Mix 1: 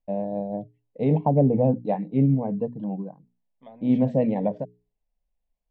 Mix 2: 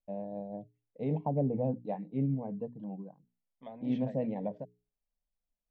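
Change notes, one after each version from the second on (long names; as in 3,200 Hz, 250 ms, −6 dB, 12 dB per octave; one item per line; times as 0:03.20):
first voice −11.0 dB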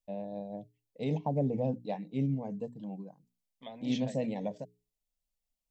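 master: remove low-pass filter 1,500 Hz 12 dB per octave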